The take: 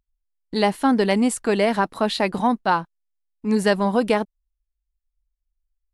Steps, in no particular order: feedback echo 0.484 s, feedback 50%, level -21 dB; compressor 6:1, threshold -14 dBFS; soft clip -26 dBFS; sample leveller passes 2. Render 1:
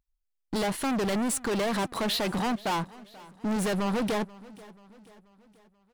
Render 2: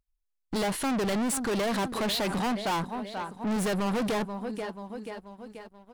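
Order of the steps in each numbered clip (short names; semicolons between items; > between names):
sample leveller > compressor > soft clip > feedback echo; feedback echo > compressor > soft clip > sample leveller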